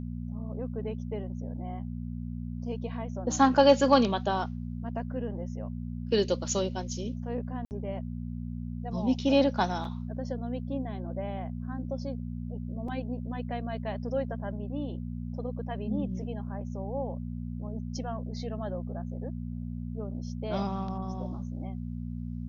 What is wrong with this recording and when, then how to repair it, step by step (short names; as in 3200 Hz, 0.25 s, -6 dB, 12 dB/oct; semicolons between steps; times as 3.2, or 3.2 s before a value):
hum 60 Hz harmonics 4 -36 dBFS
7.65–7.71 gap 59 ms
12.88 gap 3.8 ms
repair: de-hum 60 Hz, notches 4; interpolate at 7.65, 59 ms; interpolate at 12.88, 3.8 ms